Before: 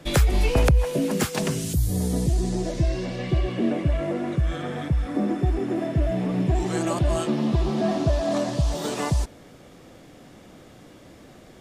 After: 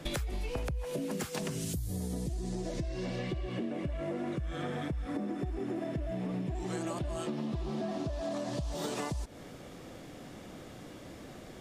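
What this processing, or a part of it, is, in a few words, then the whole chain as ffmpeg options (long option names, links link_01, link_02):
serial compression, peaks first: -af "acompressor=threshold=-28dB:ratio=6,acompressor=threshold=-34dB:ratio=2.5"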